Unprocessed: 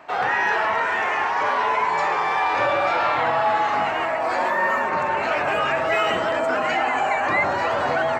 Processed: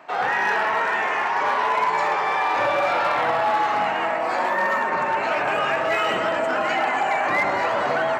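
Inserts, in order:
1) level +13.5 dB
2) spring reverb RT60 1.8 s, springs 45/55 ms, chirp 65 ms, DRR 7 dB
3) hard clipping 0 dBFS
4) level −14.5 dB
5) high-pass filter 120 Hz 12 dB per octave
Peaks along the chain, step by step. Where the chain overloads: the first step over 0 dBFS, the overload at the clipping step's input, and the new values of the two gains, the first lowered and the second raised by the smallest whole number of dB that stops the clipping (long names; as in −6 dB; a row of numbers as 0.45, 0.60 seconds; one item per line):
+3.0, +6.0, 0.0, −14.5, −12.5 dBFS
step 1, 6.0 dB
step 1 +7.5 dB, step 4 −8.5 dB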